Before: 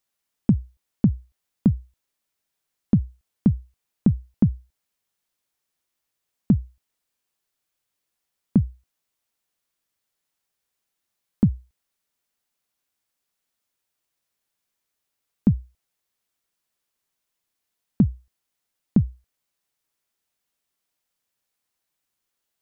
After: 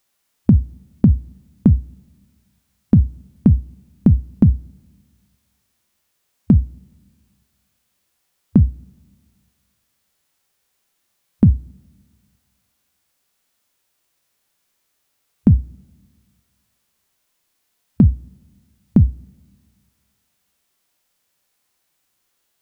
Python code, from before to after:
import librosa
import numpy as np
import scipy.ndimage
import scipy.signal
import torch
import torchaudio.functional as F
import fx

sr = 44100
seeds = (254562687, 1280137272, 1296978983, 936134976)

y = fx.hpss(x, sr, part='harmonic', gain_db=8)
y = fx.rev_double_slope(y, sr, seeds[0], early_s=0.24, late_s=1.8, knee_db=-19, drr_db=16.0)
y = y * librosa.db_to_amplitude(5.5)